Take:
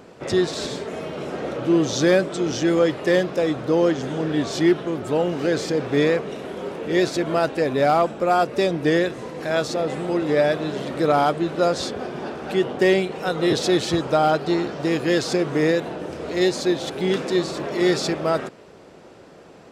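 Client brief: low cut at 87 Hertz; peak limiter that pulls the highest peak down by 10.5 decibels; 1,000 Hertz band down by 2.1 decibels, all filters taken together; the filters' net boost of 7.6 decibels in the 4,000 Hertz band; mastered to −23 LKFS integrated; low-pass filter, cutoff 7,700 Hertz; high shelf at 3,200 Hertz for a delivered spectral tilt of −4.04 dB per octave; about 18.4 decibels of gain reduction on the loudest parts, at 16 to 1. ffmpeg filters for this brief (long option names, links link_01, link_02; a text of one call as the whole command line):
ffmpeg -i in.wav -af "highpass=87,lowpass=7700,equalizer=frequency=1000:width_type=o:gain=-4.5,highshelf=frequency=3200:gain=8.5,equalizer=frequency=4000:width_type=o:gain=3.5,acompressor=threshold=-32dB:ratio=16,volume=17dB,alimiter=limit=-14dB:level=0:latency=1" out.wav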